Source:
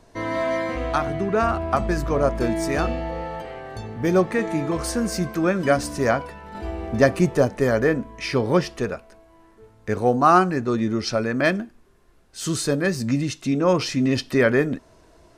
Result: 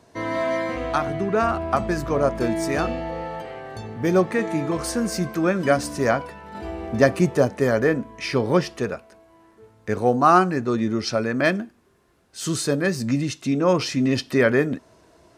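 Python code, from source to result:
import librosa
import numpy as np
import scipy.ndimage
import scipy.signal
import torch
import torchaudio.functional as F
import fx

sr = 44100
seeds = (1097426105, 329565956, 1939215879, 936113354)

y = scipy.signal.sosfilt(scipy.signal.butter(2, 82.0, 'highpass', fs=sr, output='sos'), x)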